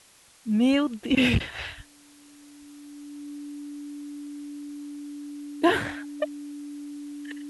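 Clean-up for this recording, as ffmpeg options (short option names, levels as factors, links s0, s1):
-af "adeclick=t=4,bandreject=f=290:w=30,afwtdn=0.002"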